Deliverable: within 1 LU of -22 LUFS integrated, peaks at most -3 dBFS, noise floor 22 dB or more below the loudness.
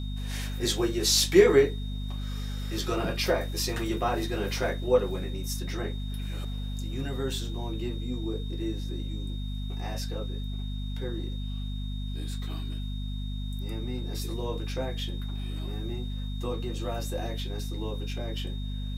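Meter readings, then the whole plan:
hum 50 Hz; highest harmonic 250 Hz; hum level -31 dBFS; steady tone 3.7 kHz; tone level -46 dBFS; loudness -30.5 LUFS; peak level -6.5 dBFS; loudness target -22.0 LUFS
-> hum notches 50/100/150/200/250 Hz; band-stop 3.7 kHz, Q 30; trim +8.5 dB; peak limiter -3 dBFS

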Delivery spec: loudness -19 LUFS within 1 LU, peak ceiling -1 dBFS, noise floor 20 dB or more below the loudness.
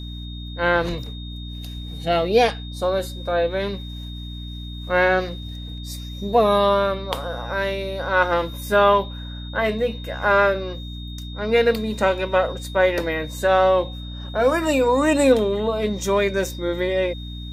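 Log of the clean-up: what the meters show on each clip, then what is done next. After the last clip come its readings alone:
hum 60 Hz; highest harmonic 300 Hz; hum level -31 dBFS; steady tone 3.7 kHz; tone level -39 dBFS; loudness -21.0 LUFS; peak level -3.5 dBFS; loudness target -19.0 LUFS
-> hum notches 60/120/180/240/300 Hz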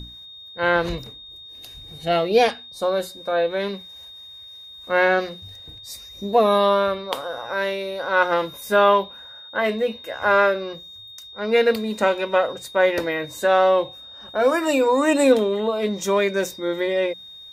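hum not found; steady tone 3.7 kHz; tone level -39 dBFS
-> band-stop 3.7 kHz, Q 30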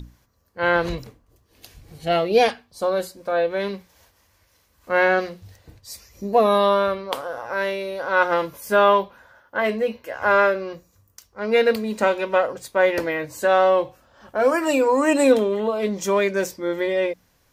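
steady tone not found; loudness -21.0 LUFS; peak level -4.0 dBFS; loudness target -19.0 LUFS
-> trim +2 dB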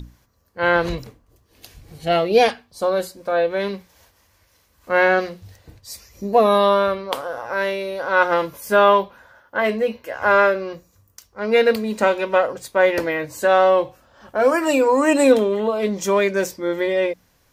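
loudness -19.0 LUFS; peak level -2.0 dBFS; noise floor -61 dBFS

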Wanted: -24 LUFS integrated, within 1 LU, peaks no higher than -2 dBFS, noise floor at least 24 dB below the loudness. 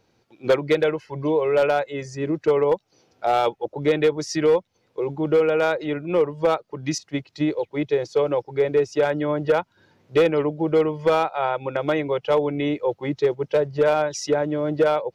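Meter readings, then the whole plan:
clipped samples 1.1%; clipping level -12.0 dBFS; loudness -22.5 LUFS; peak level -12.0 dBFS; loudness target -24.0 LUFS
-> clip repair -12 dBFS; trim -1.5 dB

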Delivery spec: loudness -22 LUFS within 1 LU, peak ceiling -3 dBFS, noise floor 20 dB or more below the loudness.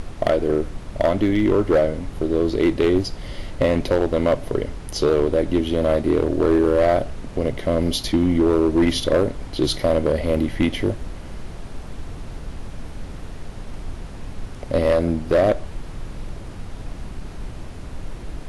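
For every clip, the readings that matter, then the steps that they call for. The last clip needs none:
clipped samples 1.5%; clipping level -11.0 dBFS; noise floor -35 dBFS; noise floor target -41 dBFS; loudness -20.5 LUFS; peak level -11.0 dBFS; loudness target -22.0 LUFS
-> clip repair -11 dBFS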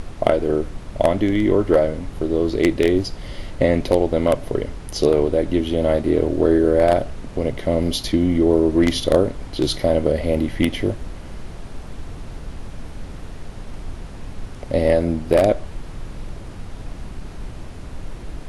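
clipped samples 0.0%; noise floor -35 dBFS; noise floor target -40 dBFS
-> noise print and reduce 6 dB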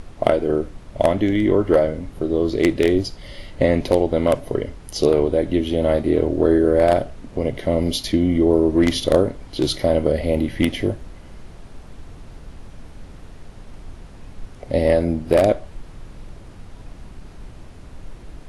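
noise floor -41 dBFS; loudness -19.5 LUFS; peak level -2.0 dBFS; loudness target -22.0 LUFS
-> trim -2.5 dB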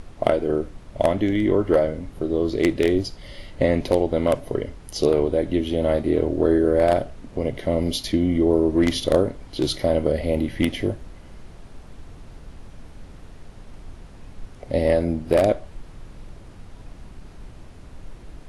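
loudness -22.0 LUFS; peak level -4.5 dBFS; noise floor -44 dBFS

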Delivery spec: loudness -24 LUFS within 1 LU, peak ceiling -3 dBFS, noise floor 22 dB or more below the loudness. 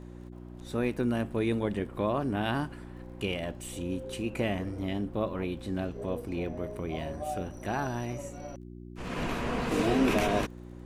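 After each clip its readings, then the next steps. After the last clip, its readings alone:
tick rate 22 per s; hum 60 Hz; highest harmonic 360 Hz; hum level -42 dBFS; loudness -32.0 LUFS; peak level -11.0 dBFS; loudness target -24.0 LUFS
-> de-click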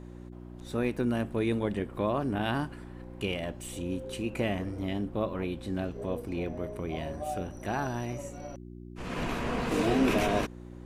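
tick rate 0 per s; hum 60 Hz; highest harmonic 360 Hz; hum level -42 dBFS
-> de-hum 60 Hz, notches 6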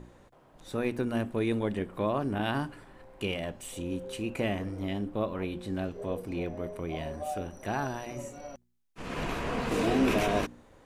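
hum not found; loudness -32.5 LUFS; peak level -15.0 dBFS; loudness target -24.0 LUFS
-> trim +8.5 dB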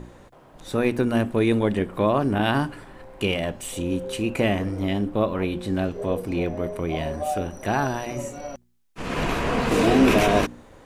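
loudness -24.0 LUFS; peak level -6.5 dBFS; noise floor -51 dBFS

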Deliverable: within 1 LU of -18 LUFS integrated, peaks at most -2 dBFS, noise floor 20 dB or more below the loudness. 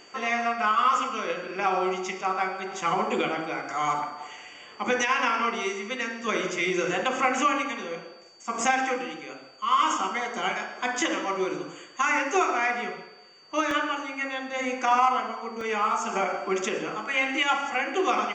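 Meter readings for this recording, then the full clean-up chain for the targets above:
dropouts 2; longest dropout 2.5 ms; steady tone 4.6 kHz; tone level -53 dBFS; loudness -26.5 LUFS; peak level -9.5 dBFS; loudness target -18.0 LUFS
-> interpolate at 13.71/15.61 s, 2.5 ms; band-stop 4.6 kHz, Q 30; trim +8.5 dB; peak limiter -2 dBFS

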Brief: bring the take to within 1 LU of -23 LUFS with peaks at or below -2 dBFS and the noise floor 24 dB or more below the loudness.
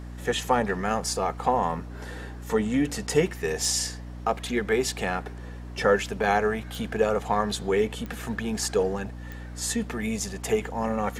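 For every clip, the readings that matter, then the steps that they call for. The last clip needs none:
clicks found 4; hum 60 Hz; highest harmonic 300 Hz; hum level -36 dBFS; loudness -27.0 LUFS; peak level -8.0 dBFS; loudness target -23.0 LUFS
-> de-click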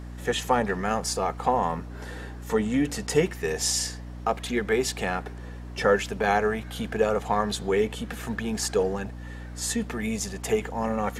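clicks found 0; hum 60 Hz; highest harmonic 300 Hz; hum level -36 dBFS
-> de-hum 60 Hz, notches 5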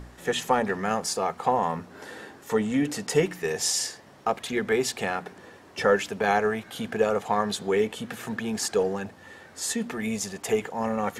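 hum not found; loudness -27.0 LUFS; peak level -8.0 dBFS; loudness target -23.0 LUFS
-> trim +4 dB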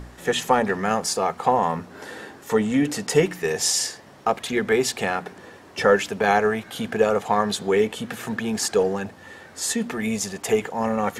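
loudness -23.0 LUFS; peak level -4.0 dBFS; noise floor -47 dBFS

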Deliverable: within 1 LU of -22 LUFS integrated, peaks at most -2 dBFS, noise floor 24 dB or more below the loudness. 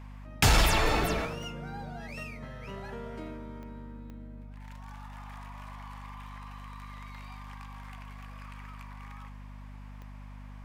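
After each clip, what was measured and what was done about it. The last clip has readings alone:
clicks found 4; hum 50 Hz; highest harmonic 250 Hz; hum level -43 dBFS; loudness -30.0 LUFS; peak level -13.0 dBFS; loudness target -22.0 LUFS
-> de-click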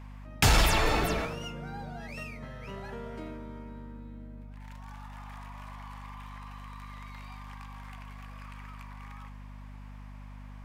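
clicks found 0; hum 50 Hz; highest harmonic 250 Hz; hum level -43 dBFS
-> hum notches 50/100/150/200/250 Hz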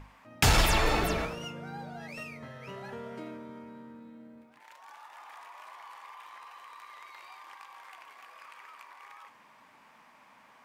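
hum not found; loudness -30.0 LUFS; peak level -12.5 dBFS; loudness target -22.0 LUFS
-> trim +8 dB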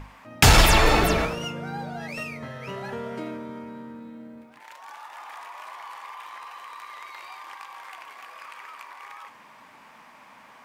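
loudness -22.0 LUFS; peak level -4.5 dBFS; noise floor -51 dBFS

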